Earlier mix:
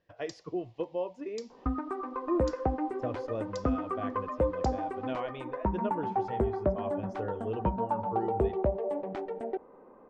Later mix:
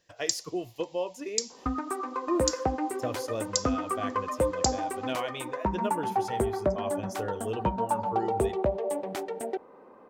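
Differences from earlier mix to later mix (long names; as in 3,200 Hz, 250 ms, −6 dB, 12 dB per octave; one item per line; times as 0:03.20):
second sound: add high-pass filter 62 Hz
master: remove head-to-tape spacing loss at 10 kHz 36 dB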